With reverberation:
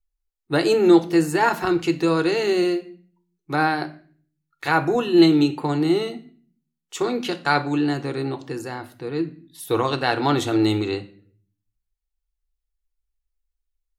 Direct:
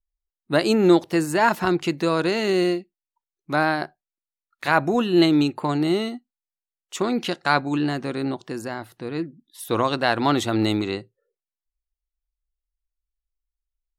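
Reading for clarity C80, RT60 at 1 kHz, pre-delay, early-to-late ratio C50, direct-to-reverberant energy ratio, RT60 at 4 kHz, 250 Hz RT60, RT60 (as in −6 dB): 20.0 dB, 0.40 s, 3 ms, 15.5 dB, 6.0 dB, 0.40 s, 0.70 s, 0.45 s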